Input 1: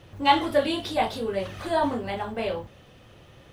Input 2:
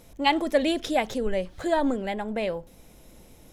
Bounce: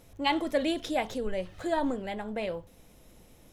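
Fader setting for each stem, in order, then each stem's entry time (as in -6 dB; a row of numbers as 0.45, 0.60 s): -16.0, -5.0 dB; 0.00, 0.00 s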